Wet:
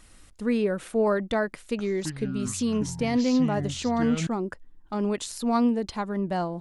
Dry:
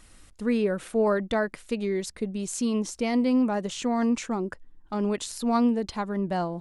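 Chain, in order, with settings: 1.49–4.27 s: ever faster or slower copies 226 ms, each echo -7 st, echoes 2, each echo -6 dB

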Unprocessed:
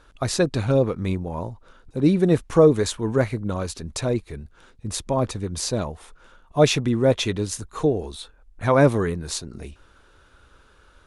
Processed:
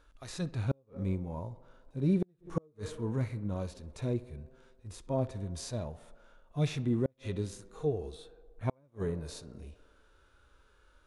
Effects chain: harmonic-percussive split percussive -17 dB; tape echo 64 ms, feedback 84%, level -19 dB, low-pass 3 kHz; inverted gate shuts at -11 dBFS, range -40 dB; trim -6.5 dB

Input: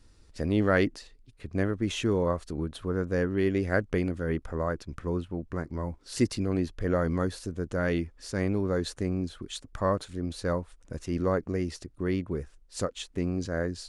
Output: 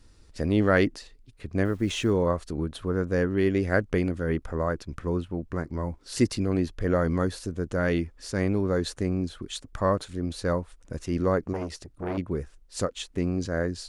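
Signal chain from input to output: 1.65–2.11 s: word length cut 10-bit, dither none; 11.53–12.18 s: transformer saturation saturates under 750 Hz; trim +2.5 dB

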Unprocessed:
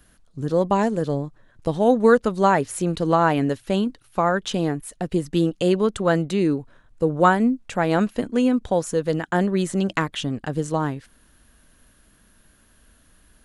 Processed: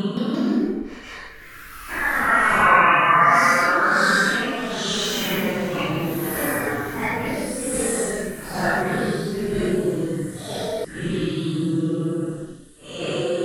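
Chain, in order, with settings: short-time spectra conjugated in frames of 61 ms; recorder AGC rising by 67 dB/s; high-order bell 1.4 kHz +13.5 dB 1.1 oct; de-hum 150.8 Hz, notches 14; Paulstretch 7.2×, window 0.05 s, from 3.79 s; on a send: feedback echo behind a high-pass 623 ms, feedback 85%, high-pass 5.4 kHz, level -16.5 dB; on the sum: ever faster or slower copies 171 ms, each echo +4 st, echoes 2; trim -4.5 dB

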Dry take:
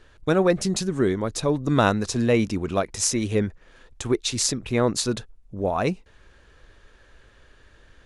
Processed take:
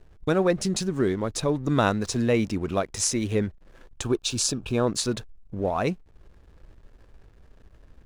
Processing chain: in parallel at +1.5 dB: compression, threshold -33 dBFS, peak gain reduction 17.5 dB; on the sum: hysteresis with a dead band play -40 dBFS; 4.03–4.87 s: Butterworth band-stop 2 kHz, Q 3.8; trim -4 dB

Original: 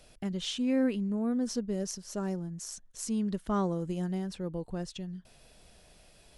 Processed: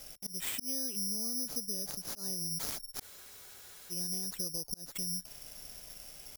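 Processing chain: low-pass 7.3 kHz 24 dB/octave; slow attack 463 ms; compression 16:1, threshold -42 dBFS, peak gain reduction 16 dB; careless resampling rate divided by 8×, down none, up zero stuff; spectral freeze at 3.04 s, 0.88 s

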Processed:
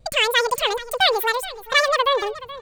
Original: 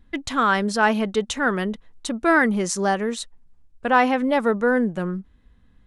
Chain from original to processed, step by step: vibrato 1.8 Hz 62 cents; wide varispeed 2.24×; feedback delay 426 ms, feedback 32%, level -16.5 dB; trim +1 dB

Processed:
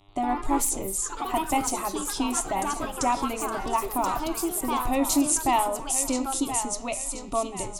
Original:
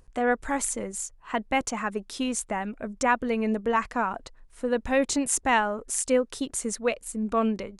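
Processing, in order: gate -45 dBFS, range -19 dB; bass shelf 150 Hz +9 dB; in parallel at +1.5 dB: compression, threshold -34 dBFS, peak gain reduction 16.5 dB; on the sum: mains buzz 100 Hz, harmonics 39, -57 dBFS -3 dB/octave; static phaser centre 320 Hz, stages 8; thinning echo 1029 ms, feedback 45%, high-pass 570 Hz, level -8 dB; on a send at -10 dB: reverberation RT60 0.45 s, pre-delay 9 ms; on the sum: ever faster or slower copies 88 ms, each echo +3 st, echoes 3, each echo -6 dB

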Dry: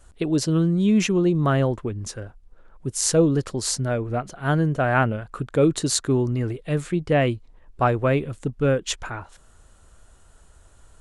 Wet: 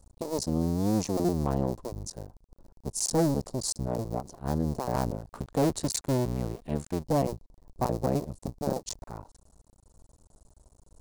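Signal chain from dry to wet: cycle switcher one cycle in 2, muted; high-order bell 2.1 kHz -15.5 dB, from 5.31 s -8.5 dB, from 7.01 s -16 dB; saturation -12.5 dBFS, distortion -19 dB; trim -3.5 dB

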